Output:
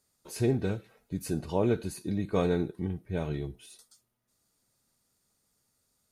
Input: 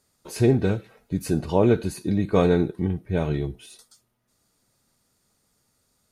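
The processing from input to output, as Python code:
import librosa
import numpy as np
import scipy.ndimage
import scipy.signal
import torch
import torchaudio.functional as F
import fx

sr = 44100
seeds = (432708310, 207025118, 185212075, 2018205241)

y = fx.high_shelf(x, sr, hz=5300.0, db=5.0)
y = y * librosa.db_to_amplitude(-8.0)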